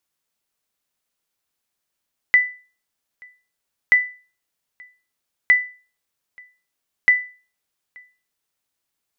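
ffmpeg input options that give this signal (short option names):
-f lavfi -i "aevalsrc='0.501*(sin(2*PI*1990*mod(t,1.58))*exp(-6.91*mod(t,1.58)/0.36)+0.0335*sin(2*PI*1990*max(mod(t,1.58)-0.88,0))*exp(-6.91*max(mod(t,1.58)-0.88,0)/0.36))':d=6.32:s=44100"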